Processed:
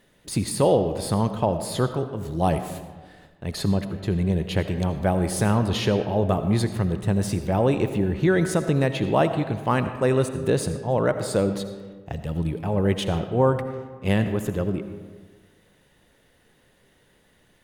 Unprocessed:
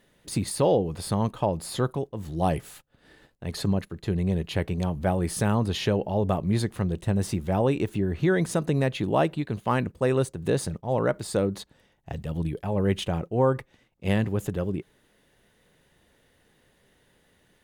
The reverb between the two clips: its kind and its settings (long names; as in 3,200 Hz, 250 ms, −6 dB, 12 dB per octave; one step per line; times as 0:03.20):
comb and all-pass reverb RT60 1.5 s, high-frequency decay 0.55×, pre-delay 40 ms, DRR 9 dB
level +2.5 dB